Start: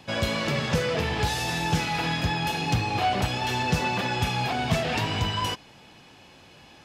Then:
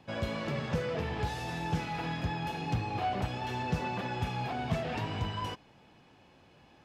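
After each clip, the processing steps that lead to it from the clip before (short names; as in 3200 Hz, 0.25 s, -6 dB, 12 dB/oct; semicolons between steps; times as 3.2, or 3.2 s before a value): high shelf 2500 Hz -11 dB; gain -6.5 dB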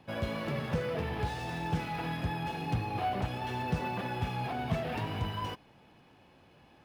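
decimation joined by straight lines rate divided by 3×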